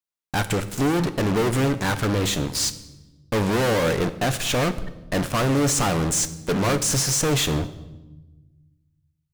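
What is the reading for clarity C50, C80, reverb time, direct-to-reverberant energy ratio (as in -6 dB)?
14.5 dB, 16.5 dB, 1.1 s, 10.5 dB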